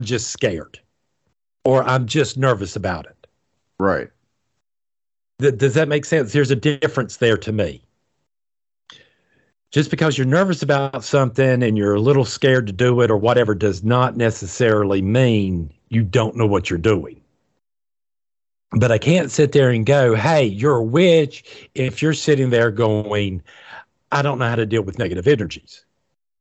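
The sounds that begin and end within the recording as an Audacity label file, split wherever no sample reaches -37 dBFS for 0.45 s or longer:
1.650000	3.240000	sound
3.800000	4.060000	sound
5.400000	7.770000	sound
8.900000	9.010000	sound
9.730000	17.130000	sound
18.720000	25.780000	sound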